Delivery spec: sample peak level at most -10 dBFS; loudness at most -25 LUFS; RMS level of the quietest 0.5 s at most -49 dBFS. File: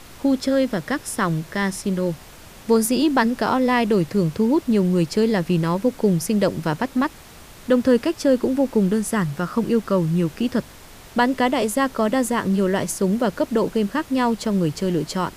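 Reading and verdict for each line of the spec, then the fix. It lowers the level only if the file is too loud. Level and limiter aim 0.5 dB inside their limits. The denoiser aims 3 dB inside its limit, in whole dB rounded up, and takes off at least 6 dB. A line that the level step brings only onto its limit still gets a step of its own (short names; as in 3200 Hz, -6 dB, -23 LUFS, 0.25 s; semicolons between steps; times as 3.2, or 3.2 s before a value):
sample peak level -5.5 dBFS: fail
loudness -21.0 LUFS: fail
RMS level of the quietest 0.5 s -43 dBFS: fail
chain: denoiser 6 dB, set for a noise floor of -43 dBFS; gain -4.5 dB; limiter -10.5 dBFS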